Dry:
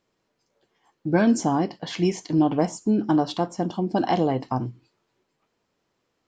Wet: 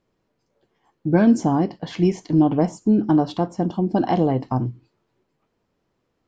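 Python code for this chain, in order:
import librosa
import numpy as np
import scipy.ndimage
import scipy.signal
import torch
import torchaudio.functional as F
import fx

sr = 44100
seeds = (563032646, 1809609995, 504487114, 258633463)

y = fx.tilt_eq(x, sr, slope=-2.0)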